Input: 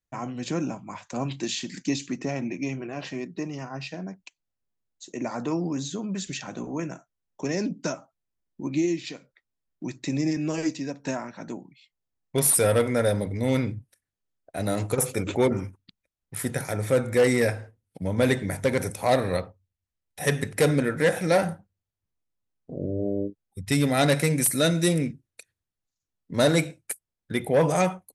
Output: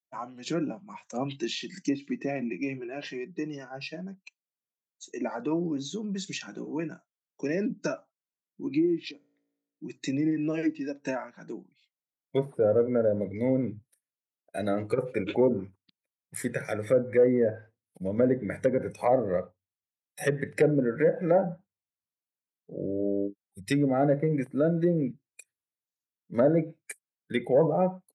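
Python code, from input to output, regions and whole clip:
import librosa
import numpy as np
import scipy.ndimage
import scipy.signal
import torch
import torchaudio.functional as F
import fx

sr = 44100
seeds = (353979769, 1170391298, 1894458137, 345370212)

y = fx.chain(x, sr, fx.tilt_shelf(db=6.0, hz=710.0),
    fx.comb_fb(f0_hz=57.0, decay_s=1.3, harmonics='all', damping=0.0, mix_pct=60), at=(9.11, 9.9))
y = scipy.signal.sosfilt(scipy.signal.butter(2, 180.0, 'highpass', fs=sr, output='sos'), y)
y = fx.env_lowpass_down(y, sr, base_hz=760.0, full_db=-19.5)
y = fx.noise_reduce_blind(y, sr, reduce_db=11)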